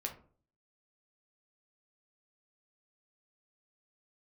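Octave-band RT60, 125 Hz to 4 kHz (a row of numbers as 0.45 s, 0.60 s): 0.65 s, 0.55 s, 0.50 s, 0.40 s, 0.30 s, 0.20 s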